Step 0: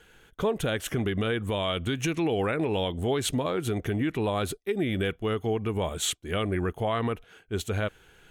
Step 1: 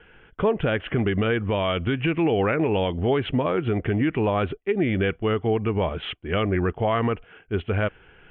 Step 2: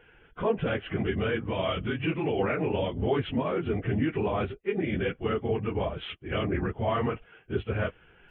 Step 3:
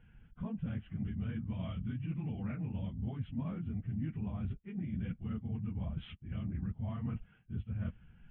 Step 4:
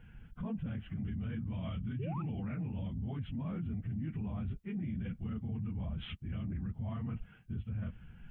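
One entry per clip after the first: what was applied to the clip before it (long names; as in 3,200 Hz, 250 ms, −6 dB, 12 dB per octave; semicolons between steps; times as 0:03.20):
Butterworth low-pass 3,100 Hz 72 dB per octave; level +5 dB
random phases in long frames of 50 ms; level −5.5 dB
drawn EQ curve 220 Hz 0 dB, 390 Hz −26 dB, 740 Hz −19 dB; reversed playback; downward compressor 6 to 1, threshold −40 dBFS, peak gain reduction 14 dB; reversed playback; level +5 dB
brickwall limiter −37.5 dBFS, peak gain reduction 10.5 dB; sound drawn into the spectrogram rise, 0:01.99–0:02.22, 350–1,400 Hz −51 dBFS; level +6 dB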